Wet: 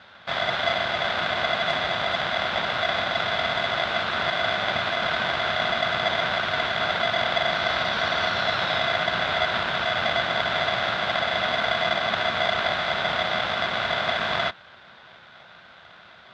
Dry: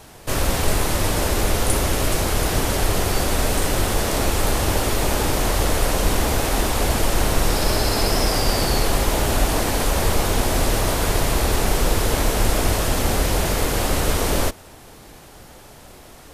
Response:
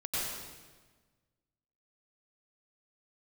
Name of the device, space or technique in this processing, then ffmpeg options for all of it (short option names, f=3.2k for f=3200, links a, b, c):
ring modulator pedal into a guitar cabinet: -af "aeval=exprs='val(0)*sgn(sin(2*PI*680*n/s))':c=same,highpass=90,equalizer=f=290:t=q:w=4:g=-10,equalizer=f=420:t=q:w=4:g=-5,equalizer=f=700:t=q:w=4:g=-3,equalizer=f=1.5k:t=q:w=4:g=10,equalizer=f=3.6k:t=q:w=4:g=9,lowpass=f=3.9k:w=0.5412,lowpass=f=3.9k:w=1.3066,volume=-6dB"